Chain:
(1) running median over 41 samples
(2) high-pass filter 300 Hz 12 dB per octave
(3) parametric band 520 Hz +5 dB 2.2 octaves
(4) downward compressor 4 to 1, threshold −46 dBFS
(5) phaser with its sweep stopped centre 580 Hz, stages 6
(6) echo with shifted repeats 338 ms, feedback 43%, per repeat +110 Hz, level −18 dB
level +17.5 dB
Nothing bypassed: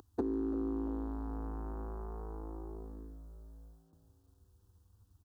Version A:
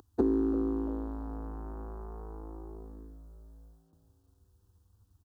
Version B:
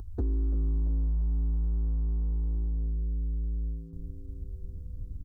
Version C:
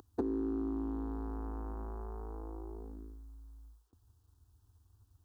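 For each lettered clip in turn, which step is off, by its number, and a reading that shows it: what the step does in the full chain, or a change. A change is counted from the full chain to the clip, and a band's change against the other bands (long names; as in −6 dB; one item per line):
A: 4, change in crest factor +2.5 dB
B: 2, 125 Hz band +22.5 dB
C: 6, echo-to-direct ratio −17.0 dB to none audible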